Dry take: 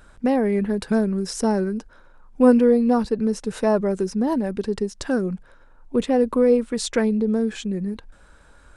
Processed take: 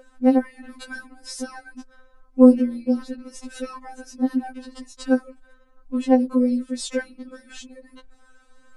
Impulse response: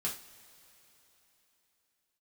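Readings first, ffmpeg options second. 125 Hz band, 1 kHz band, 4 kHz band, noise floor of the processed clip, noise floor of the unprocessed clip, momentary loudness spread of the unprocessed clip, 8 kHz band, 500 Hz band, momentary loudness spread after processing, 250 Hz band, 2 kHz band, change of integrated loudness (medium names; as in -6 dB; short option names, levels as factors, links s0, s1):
under -15 dB, -4.0 dB, -4.0 dB, -55 dBFS, -52 dBFS, 11 LU, -3.5 dB, -5.5 dB, 24 LU, -0.5 dB, -2.5 dB, +0.5 dB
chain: -af "aeval=exprs='val(0)+0.0224*sin(2*PI*550*n/s)':c=same,afftfilt=real='re*3.46*eq(mod(b,12),0)':imag='im*3.46*eq(mod(b,12),0)':win_size=2048:overlap=0.75,volume=0.841"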